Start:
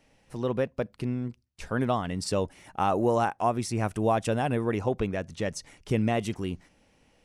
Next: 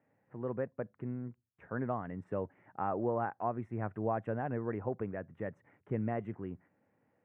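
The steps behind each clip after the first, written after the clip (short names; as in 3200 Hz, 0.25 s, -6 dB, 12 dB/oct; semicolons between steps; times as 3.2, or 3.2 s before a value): elliptic band-pass 100–1800 Hz, stop band 40 dB; gain -8.5 dB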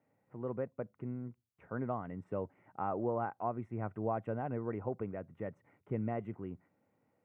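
notch 1700 Hz, Q 6.1; gain -1.5 dB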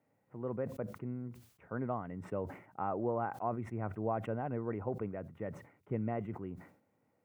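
sustainer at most 110 dB/s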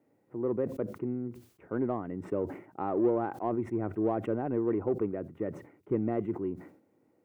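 bell 340 Hz +13.5 dB 0.91 oct; in parallel at -7 dB: soft clip -26.5 dBFS, distortion -11 dB; on the sum: gain -2.5 dB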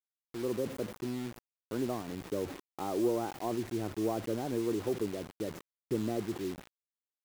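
dynamic EQ 2100 Hz, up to -4 dB, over -52 dBFS, Q 0.99; bit-crush 7-bit; gain -3 dB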